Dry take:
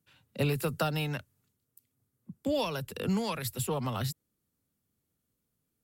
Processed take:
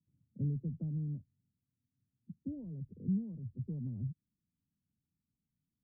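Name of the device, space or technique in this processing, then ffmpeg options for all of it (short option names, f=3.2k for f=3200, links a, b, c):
the neighbour's flat through the wall: -af "lowpass=f=280:w=0.5412,lowpass=f=280:w=1.3066,equalizer=f=170:t=o:w=0.77:g=4,volume=-6dB"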